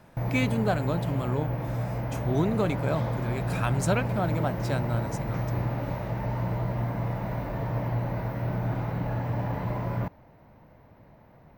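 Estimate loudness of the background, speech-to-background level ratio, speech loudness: −30.5 LKFS, 0.0 dB, −30.5 LKFS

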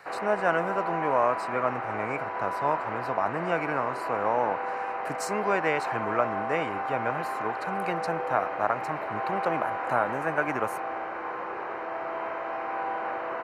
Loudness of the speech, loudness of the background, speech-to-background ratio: −30.5 LKFS, −32.5 LKFS, 2.0 dB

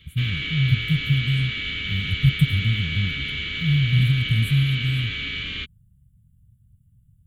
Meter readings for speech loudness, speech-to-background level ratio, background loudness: −23.0 LKFS, 4.0 dB, −27.0 LKFS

